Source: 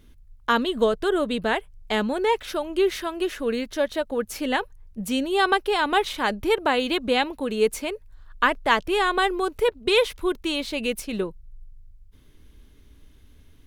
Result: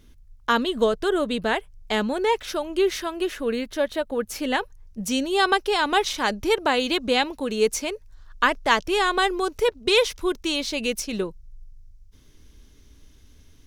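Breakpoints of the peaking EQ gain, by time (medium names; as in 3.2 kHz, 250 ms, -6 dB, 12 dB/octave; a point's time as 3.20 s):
peaking EQ 5.8 kHz 0.72 oct
3.01 s +5.5 dB
3.48 s -1 dB
4.01 s -1 dB
5.06 s +11 dB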